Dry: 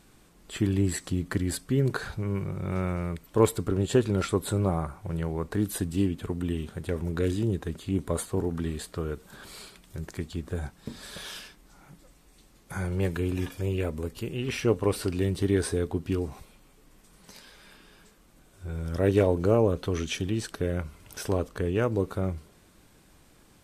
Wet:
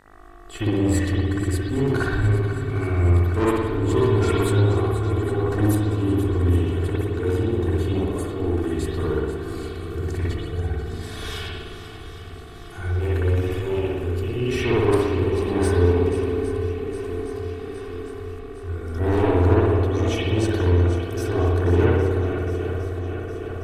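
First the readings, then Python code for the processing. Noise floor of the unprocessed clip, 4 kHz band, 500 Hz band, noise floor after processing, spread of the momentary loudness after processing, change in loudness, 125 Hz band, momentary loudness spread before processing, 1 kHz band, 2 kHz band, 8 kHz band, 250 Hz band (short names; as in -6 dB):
-58 dBFS, +4.5 dB, +6.5 dB, -37 dBFS, 13 LU, +6.5 dB, +9.0 dB, 14 LU, +8.0 dB, +7.5 dB, -1.0 dB, +5.5 dB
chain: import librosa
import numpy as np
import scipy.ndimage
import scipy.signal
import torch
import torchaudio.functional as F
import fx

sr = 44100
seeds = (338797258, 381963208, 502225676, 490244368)

y = fx.low_shelf(x, sr, hz=83.0, db=12.0)
y = y + 0.78 * np.pad(y, (int(2.7 * sr / 1000.0), 0))[:len(y)]
y = fx.tremolo_shape(y, sr, shape='saw_up', hz=0.87, depth_pct=75)
y = fx.echo_swing(y, sr, ms=811, ratio=1.5, feedback_pct=60, wet_db=-12)
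y = 10.0 ** (-21.5 / 20.0) * np.tanh(y / 10.0 ** (-21.5 / 20.0))
y = fx.dmg_buzz(y, sr, base_hz=50.0, harmonics=39, level_db=-57.0, tilt_db=0, odd_only=False)
y = fx.rev_spring(y, sr, rt60_s=1.3, pass_ms=(57,), chirp_ms=70, drr_db=-7.0)
y = y * librosa.db_to_amplitude(1.0)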